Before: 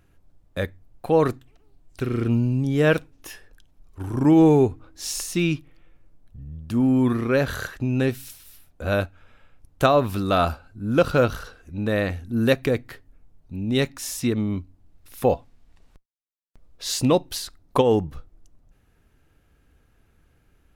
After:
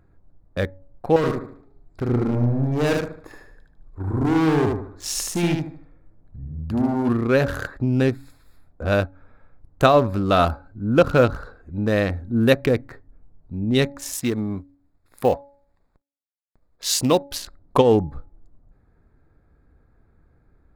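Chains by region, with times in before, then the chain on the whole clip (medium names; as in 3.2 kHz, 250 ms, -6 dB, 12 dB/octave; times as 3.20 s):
1.16–7.09 s: hard clipper -22 dBFS + feedback delay 75 ms, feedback 38%, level -3 dB
14.13–17.32 s: companding laws mixed up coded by A + tilt EQ +1.5 dB/octave
whole clip: local Wiener filter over 15 samples; de-hum 281.4 Hz, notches 3; trim +3 dB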